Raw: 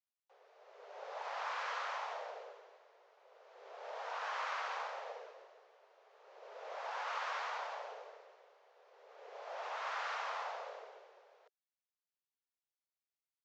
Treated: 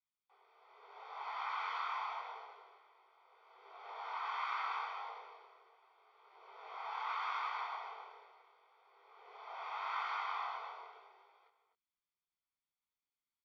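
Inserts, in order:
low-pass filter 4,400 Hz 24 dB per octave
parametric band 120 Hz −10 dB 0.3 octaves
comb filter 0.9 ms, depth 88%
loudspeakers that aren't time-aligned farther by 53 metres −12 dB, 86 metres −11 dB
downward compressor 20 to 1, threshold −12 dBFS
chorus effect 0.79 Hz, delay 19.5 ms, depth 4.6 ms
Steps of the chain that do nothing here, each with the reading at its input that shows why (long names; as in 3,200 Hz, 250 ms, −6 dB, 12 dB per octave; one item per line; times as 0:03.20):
parametric band 120 Hz: nothing at its input below 360 Hz
downward compressor, threshold −12 dBFS: peak of its input −23.0 dBFS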